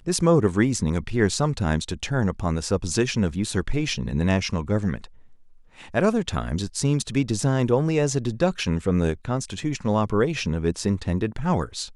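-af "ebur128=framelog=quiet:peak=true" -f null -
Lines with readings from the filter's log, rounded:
Integrated loudness:
  I:         -24.0 LUFS
  Threshold: -34.2 LUFS
Loudness range:
  LRA:         2.5 LU
  Threshold: -44.5 LUFS
  LRA low:   -25.9 LUFS
  LRA high:  -23.4 LUFS
True peak:
  Peak:       -6.1 dBFS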